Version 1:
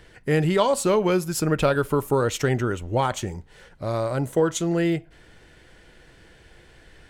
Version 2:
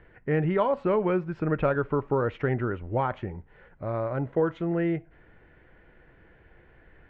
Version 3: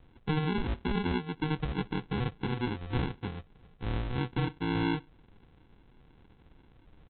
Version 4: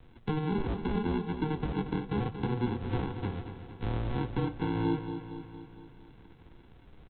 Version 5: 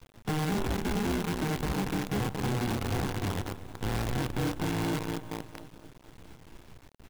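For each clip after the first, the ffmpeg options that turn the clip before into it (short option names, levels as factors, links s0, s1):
-af "lowpass=f=2200:w=0.5412,lowpass=f=2200:w=1.3066,volume=0.631"
-af "highshelf=f=2200:g=-9.5,alimiter=limit=0.112:level=0:latency=1:release=395,aresample=8000,acrusher=samples=13:mix=1:aa=0.000001,aresample=44100,volume=0.794"
-filter_complex "[0:a]acrossover=split=340|1100[s0][s1][s2];[s0]acompressor=threshold=0.0224:ratio=4[s3];[s1]acompressor=threshold=0.0141:ratio=4[s4];[s2]acompressor=threshold=0.00282:ratio=4[s5];[s3][s4][s5]amix=inputs=3:normalize=0,flanger=delay=8.3:depth=2:regen=74:speed=0.78:shape=sinusoidal,asplit=2[s6][s7];[s7]aecho=0:1:231|462|693|924|1155|1386|1617:0.335|0.194|0.113|0.0654|0.0379|0.022|0.0128[s8];[s6][s8]amix=inputs=2:normalize=0,volume=2.37"
-filter_complex "[0:a]aresample=11025,asoftclip=type=tanh:threshold=0.0251,aresample=44100,asplit=2[s0][s1];[s1]adelay=31,volume=0.251[s2];[s0][s2]amix=inputs=2:normalize=0,acrusher=bits=7:dc=4:mix=0:aa=0.000001,volume=1.78"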